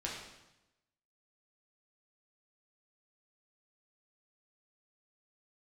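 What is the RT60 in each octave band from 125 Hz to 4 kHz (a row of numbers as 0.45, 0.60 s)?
1.1, 1.1, 0.95, 0.95, 0.90, 0.90 s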